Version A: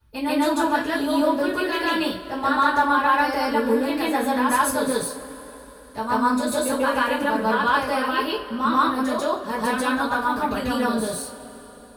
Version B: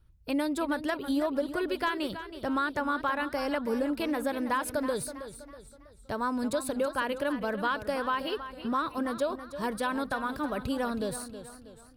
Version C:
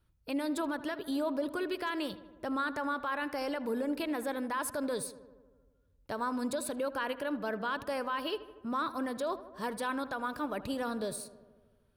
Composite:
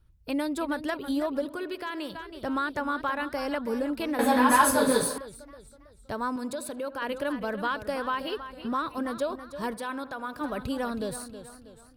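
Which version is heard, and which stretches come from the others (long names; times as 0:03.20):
B
0:01.45–0:02.15: punch in from C
0:04.19–0:05.18: punch in from A
0:06.36–0:07.02: punch in from C
0:09.74–0:10.41: punch in from C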